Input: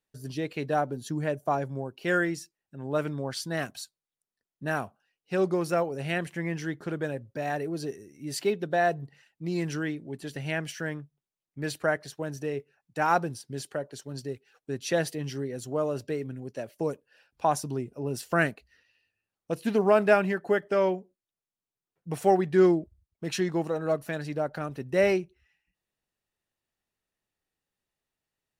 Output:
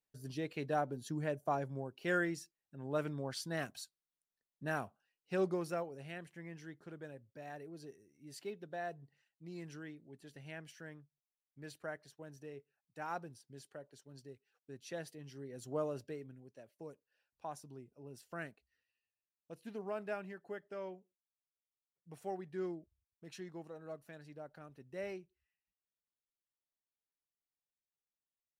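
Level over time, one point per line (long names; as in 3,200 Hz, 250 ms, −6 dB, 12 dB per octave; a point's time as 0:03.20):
0:05.43 −8 dB
0:06.15 −17.5 dB
0:15.31 −17.5 dB
0:15.77 −8 dB
0:16.57 −20 dB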